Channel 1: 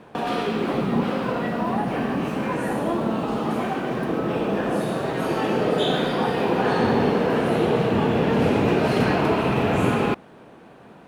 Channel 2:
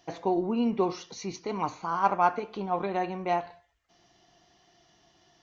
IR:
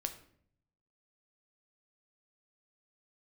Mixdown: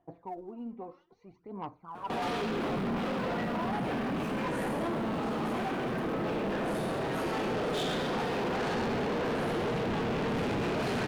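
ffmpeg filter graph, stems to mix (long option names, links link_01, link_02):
-filter_complex "[0:a]adelay=1950,volume=-2dB[link_01];[1:a]lowpass=1100,aphaser=in_gain=1:out_gain=1:delay=4:decay=0.66:speed=0.61:type=sinusoidal,volume=-14.5dB[link_02];[link_01][link_02]amix=inputs=2:normalize=0,asoftclip=type=tanh:threshold=-29dB"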